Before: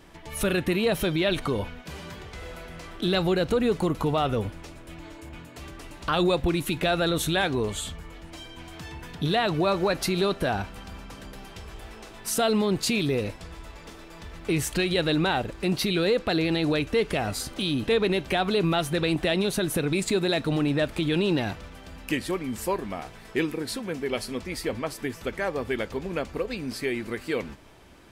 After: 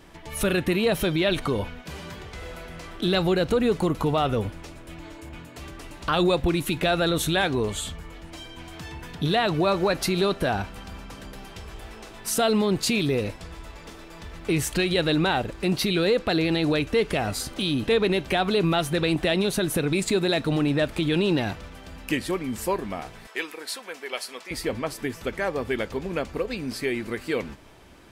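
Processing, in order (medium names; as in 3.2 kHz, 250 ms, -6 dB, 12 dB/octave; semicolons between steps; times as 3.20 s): 23.27–24.51 s: high-pass 710 Hz 12 dB/octave; trim +1.5 dB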